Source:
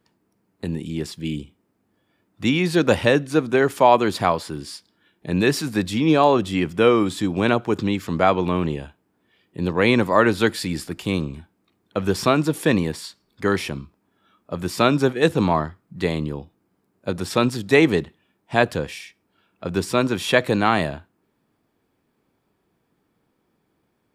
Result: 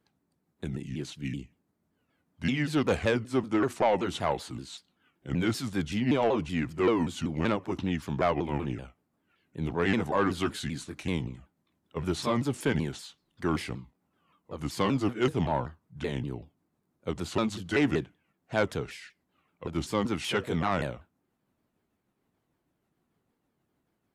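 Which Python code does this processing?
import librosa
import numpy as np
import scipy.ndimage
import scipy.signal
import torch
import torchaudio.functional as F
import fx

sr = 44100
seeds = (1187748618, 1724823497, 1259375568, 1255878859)

y = fx.pitch_ramps(x, sr, semitones=-5.0, every_ms=191)
y = 10.0 ** (-10.0 / 20.0) * np.tanh(y / 10.0 ** (-10.0 / 20.0))
y = y * 10.0 ** (-6.5 / 20.0)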